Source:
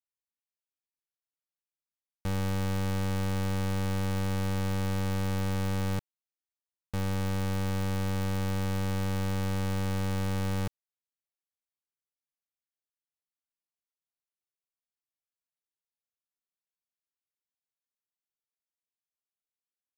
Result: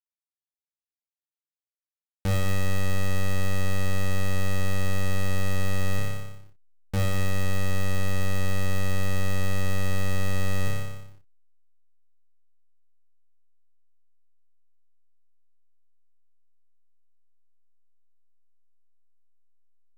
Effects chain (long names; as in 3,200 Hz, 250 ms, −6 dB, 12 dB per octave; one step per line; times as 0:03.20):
on a send: flutter between parallel walls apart 5.1 metres, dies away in 1 s
on the sum: leveller curve on the samples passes 1
parametric band 1,100 Hz −9.5 dB 0.21 octaves
slack as between gear wheels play −50.5 dBFS
level +1.5 dB